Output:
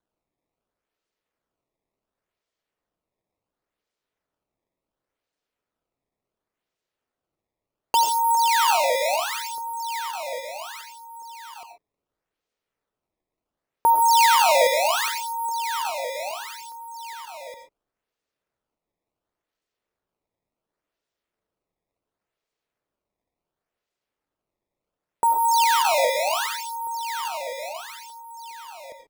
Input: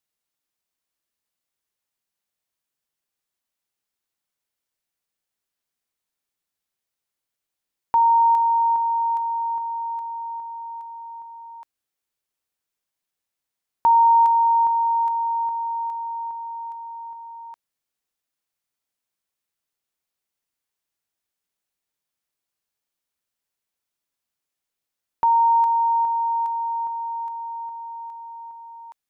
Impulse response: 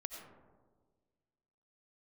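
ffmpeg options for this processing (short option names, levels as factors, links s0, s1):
-filter_complex "[0:a]equalizer=f=460:w=1.4:g=13.5,acrusher=samples=17:mix=1:aa=0.000001:lfo=1:lforange=27.2:lforate=0.7[s0];[1:a]atrim=start_sample=2205,atrim=end_sample=6615[s1];[s0][s1]afir=irnorm=-1:irlink=0"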